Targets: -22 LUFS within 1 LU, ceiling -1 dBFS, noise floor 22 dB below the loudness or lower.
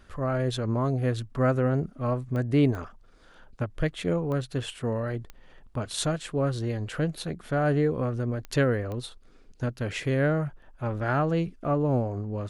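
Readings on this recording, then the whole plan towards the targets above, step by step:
clicks 6; loudness -28.0 LUFS; peak -11.5 dBFS; loudness target -22.0 LUFS
-> de-click; gain +6 dB

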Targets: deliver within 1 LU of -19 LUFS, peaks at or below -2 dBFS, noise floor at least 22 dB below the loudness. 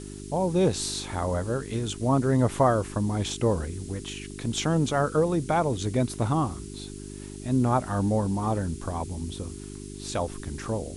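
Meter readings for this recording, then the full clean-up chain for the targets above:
hum 50 Hz; harmonics up to 400 Hz; hum level -37 dBFS; noise floor -40 dBFS; noise floor target -49 dBFS; loudness -27.0 LUFS; peak -9.0 dBFS; loudness target -19.0 LUFS
-> de-hum 50 Hz, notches 8; denoiser 9 dB, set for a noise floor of -40 dBFS; gain +8 dB; limiter -2 dBFS

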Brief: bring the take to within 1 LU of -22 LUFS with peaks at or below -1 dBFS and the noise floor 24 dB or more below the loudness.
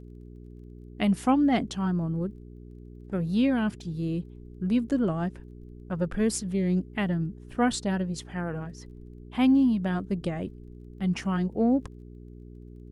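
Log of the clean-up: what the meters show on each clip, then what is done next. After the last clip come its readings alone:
ticks 16/s; hum 60 Hz; harmonics up to 420 Hz; hum level -43 dBFS; loudness -27.5 LUFS; peak -11.0 dBFS; loudness target -22.0 LUFS
-> de-click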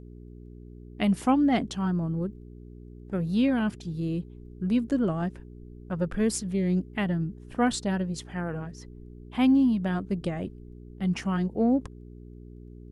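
ticks 0/s; hum 60 Hz; harmonics up to 420 Hz; hum level -44 dBFS
-> de-hum 60 Hz, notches 7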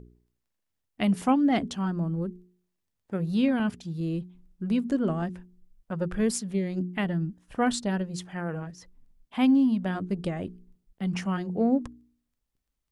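hum none; loudness -28.0 LUFS; peak -12.0 dBFS; loudness target -22.0 LUFS
-> gain +6 dB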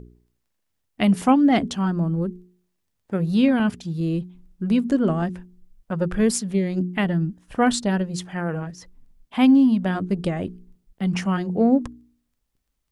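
loudness -22.0 LUFS; peak -6.0 dBFS; noise floor -75 dBFS

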